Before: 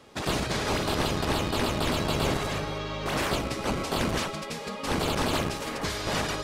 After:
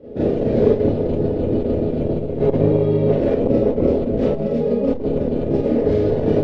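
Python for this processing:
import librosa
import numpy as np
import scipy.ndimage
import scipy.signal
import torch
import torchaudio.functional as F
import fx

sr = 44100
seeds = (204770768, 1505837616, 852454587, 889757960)

y = fx.spacing_loss(x, sr, db_at_10k=36)
y = fx.over_compress(y, sr, threshold_db=-32.0, ratio=-0.5)
y = fx.low_shelf_res(y, sr, hz=720.0, db=13.5, q=3.0)
y = fx.rev_schroeder(y, sr, rt60_s=0.36, comb_ms=26, drr_db=-8.5)
y = fx.transformer_sat(y, sr, knee_hz=180.0)
y = y * 10.0 ** (-8.0 / 20.0)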